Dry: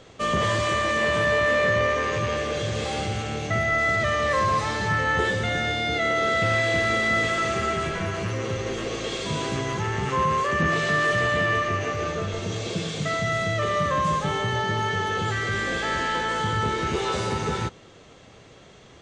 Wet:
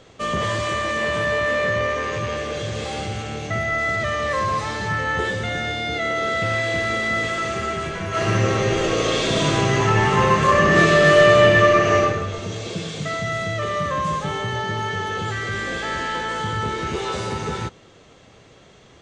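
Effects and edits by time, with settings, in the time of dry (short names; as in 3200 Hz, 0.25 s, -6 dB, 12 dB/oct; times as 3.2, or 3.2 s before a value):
8.08–12 reverb throw, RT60 0.94 s, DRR -9 dB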